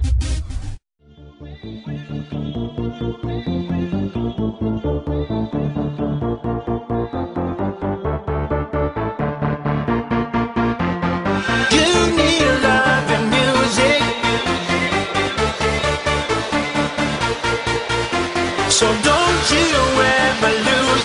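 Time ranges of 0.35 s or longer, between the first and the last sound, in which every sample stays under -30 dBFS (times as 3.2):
0.75–1.41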